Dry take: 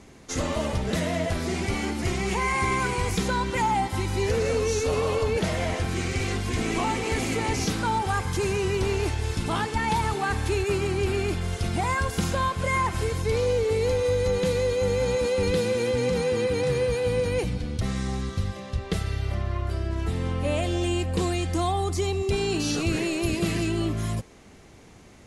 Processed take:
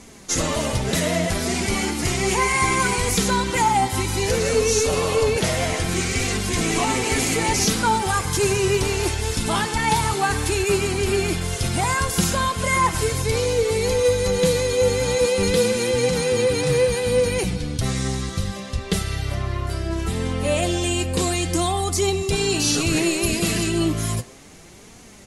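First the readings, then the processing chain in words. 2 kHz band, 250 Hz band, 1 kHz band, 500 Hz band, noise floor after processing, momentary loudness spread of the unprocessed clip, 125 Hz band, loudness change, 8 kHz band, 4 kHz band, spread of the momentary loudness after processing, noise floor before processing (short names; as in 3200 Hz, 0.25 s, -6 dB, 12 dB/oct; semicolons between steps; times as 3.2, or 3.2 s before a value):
+5.5 dB, +4.0 dB, +5.0 dB, +4.5 dB, -44 dBFS, 5 LU, +2.5 dB, +5.0 dB, +12.0 dB, +8.5 dB, 6 LU, -49 dBFS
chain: bell 11000 Hz +10 dB 2.1 oct; speakerphone echo 0.1 s, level -14 dB; flange 0.64 Hz, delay 4 ms, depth 4.1 ms, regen +52%; gain +8 dB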